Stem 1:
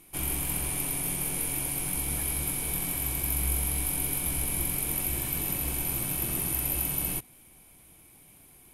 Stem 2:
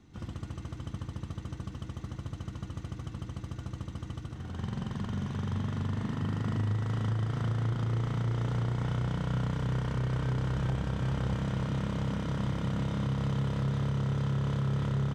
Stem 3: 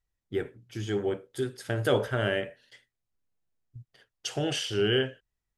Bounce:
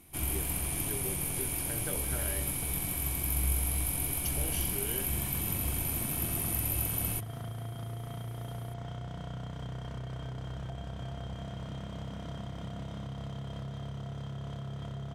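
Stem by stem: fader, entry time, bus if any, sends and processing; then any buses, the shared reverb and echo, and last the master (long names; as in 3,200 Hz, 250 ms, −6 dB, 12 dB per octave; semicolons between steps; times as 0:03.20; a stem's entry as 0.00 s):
−3.5 dB, 0.00 s, no bus, no send, no processing
−6.0 dB, 0.00 s, bus A, no send, hollow resonant body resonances 690/3,200 Hz, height 18 dB, ringing for 95 ms
−10.0 dB, 0.00 s, bus A, no send, no processing
bus A: 0.0 dB, high-shelf EQ 9,200 Hz +11 dB; downward compressor, threshold −37 dBFS, peak gain reduction 8.5 dB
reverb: not used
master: parametric band 72 Hz +5 dB 0.59 octaves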